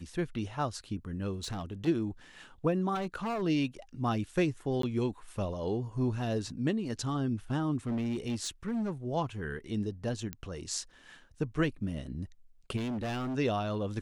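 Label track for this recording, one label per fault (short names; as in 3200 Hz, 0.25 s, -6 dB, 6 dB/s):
1.430000	1.880000	clipped -33 dBFS
2.940000	3.430000	clipped -30.5 dBFS
4.820000	4.830000	gap 13 ms
7.870000	8.910000	clipped -29 dBFS
10.330000	10.330000	pop -21 dBFS
12.760000	13.370000	clipped -32 dBFS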